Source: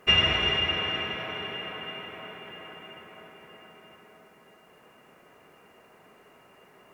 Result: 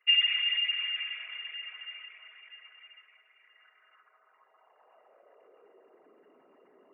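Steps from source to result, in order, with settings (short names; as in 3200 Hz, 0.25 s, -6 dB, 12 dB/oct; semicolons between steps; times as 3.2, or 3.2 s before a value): formant sharpening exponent 2; high-pass sweep 2300 Hz -> 270 Hz, 3.37–6.23; gain -8.5 dB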